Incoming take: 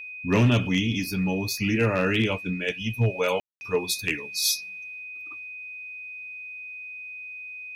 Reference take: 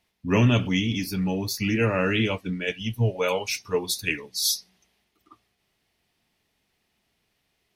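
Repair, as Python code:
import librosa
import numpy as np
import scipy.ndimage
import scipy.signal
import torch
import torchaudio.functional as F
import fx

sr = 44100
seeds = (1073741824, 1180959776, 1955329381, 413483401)

y = fx.fix_declip(x, sr, threshold_db=-13.5)
y = fx.notch(y, sr, hz=2500.0, q=30.0)
y = fx.fix_ambience(y, sr, seeds[0], print_start_s=5.35, print_end_s=5.85, start_s=3.4, end_s=3.61)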